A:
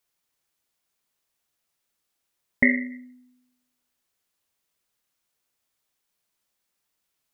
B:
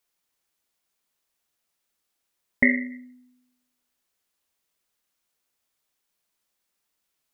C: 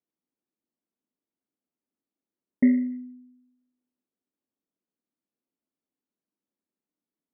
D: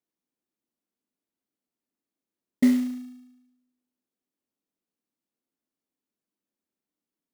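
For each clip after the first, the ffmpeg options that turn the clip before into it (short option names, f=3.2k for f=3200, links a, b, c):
-af "equalizer=f=120:w=3.2:g=-6.5"
-af "bandpass=f=260:t=q:w=2.6:csg=0,volume=5.5dB"
-af "acrusher=bits=5:mode=log:mix=0:aa=0.000001"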